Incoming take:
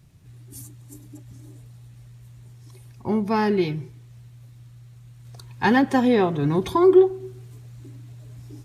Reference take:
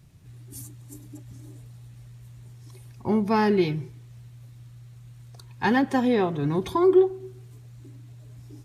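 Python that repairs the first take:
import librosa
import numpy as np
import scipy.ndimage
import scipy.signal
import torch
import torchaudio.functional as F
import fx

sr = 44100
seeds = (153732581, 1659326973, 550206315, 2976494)

y = fx.fix_level(x, sr, at_s=5.25, step_db=-3.5)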